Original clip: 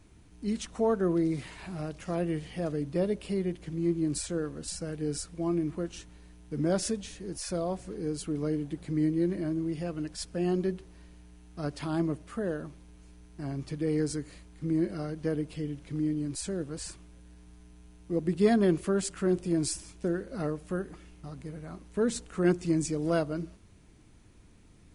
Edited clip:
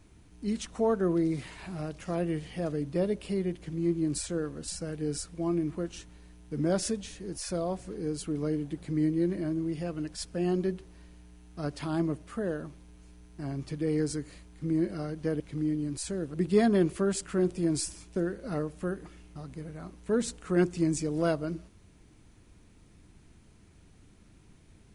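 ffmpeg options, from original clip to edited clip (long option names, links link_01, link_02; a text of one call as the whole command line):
ffmpeg -i in.wav -filter_complex "[0:a]asplit=3[link_01][link_02][link_03];[link_01]atrim=end=15.402[link_04];[link_02]atrim=start=15.778:end=16.722[link_05];[link_03]atrim=start=18.218[link_06];[link_04][link_05]acrossfade=duration=0.004:curve1=hsin:curve2=hsin[link_07];[link_07][link_06]acrossfade=duration=0.004:curve1=hsin:curve2=hsin" out.wav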